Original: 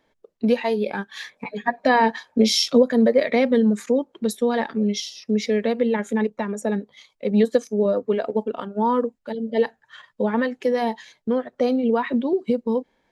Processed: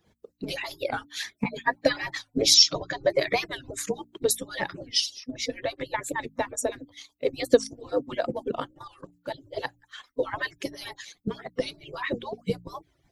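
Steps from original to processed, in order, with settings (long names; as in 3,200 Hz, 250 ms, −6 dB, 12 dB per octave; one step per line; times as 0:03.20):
harmonic-percussive split with one part muted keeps percussive
0:02.54–0:03.10: Butterworth low-pass 6,900 Hz 72 dB per octave
0:05.06–0:05.81: high-shelf EQ 4,300 Hz −8.5 dB
0:08.67–0:09.16: output level in coarse steps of 14 dB
bass and treble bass +14 dB, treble +9 dB
hum removal 58.26 Hz, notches 5
wow of a warped record 45 rpm, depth 160 cents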